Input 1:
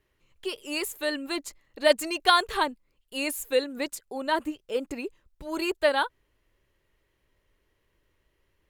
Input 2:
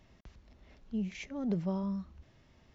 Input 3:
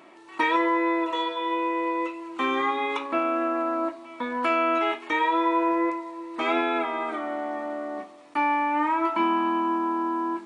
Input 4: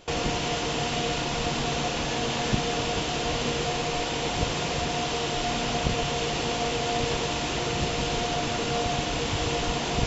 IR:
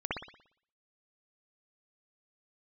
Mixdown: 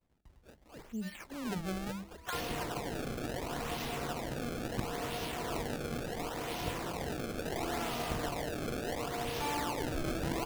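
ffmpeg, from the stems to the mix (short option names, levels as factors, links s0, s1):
-filter_complex "[0:a]highpass=1200,highshelf=f=8300:g=-10,volume=0.15,asplit=2[s0][s1];[1:a]agate=range=0.0224:threshold=0.002:ratio=3:detection=peak,volume=0.631[s2];[2:a]adelay=1050,volume=0.211[s3];[3:a]adelay=2250,volume=0.316[s4];[s1]apad=whole_len=507572[s5];[s3][s5]sidechaincompress=threshold=0.00126:ratio=6:attack=7.6:release=1330[s6];[s0][s2][s6][s4]amix=inputs=4:normalize=0,acrusher=samples=26:mix=1:aa=0.000001:lfo=1:lforange=41.6:lforate=0.72,bandreject=f=50:t=h:w=6,bandreject=f=100:t=h:w=6,bandreject=f=150:t=h:w=6,bandreject=f=200:t=h:w=6"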